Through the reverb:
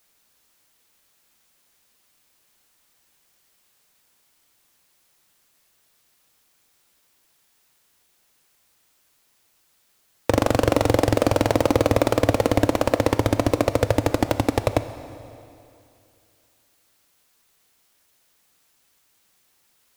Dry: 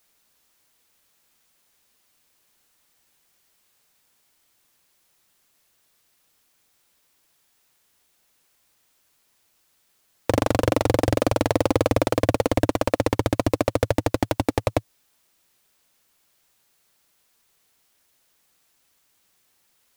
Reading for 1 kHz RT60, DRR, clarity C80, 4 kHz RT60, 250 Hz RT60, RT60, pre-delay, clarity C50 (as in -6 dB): 2.6 s, 11.0 dB, 13.0 dB, 2.4 s, 2.6 s, 2.6 s, 6 ms, 12.0 dB